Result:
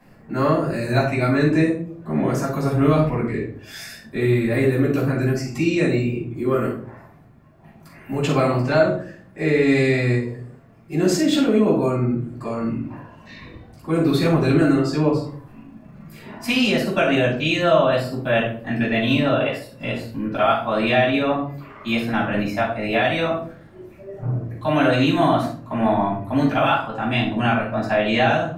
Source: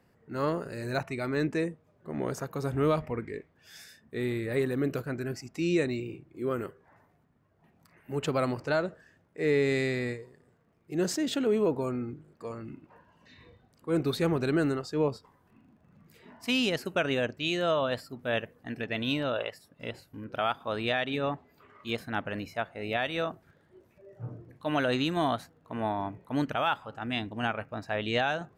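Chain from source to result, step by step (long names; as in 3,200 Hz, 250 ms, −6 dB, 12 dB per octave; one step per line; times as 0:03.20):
downward compressor 1.5 to 1, threshold −41 dBFS, peak gain reduction 7 dB
rectangular room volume 500 cubic metres, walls furnished, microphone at 8.5 metres
level +3.5 dB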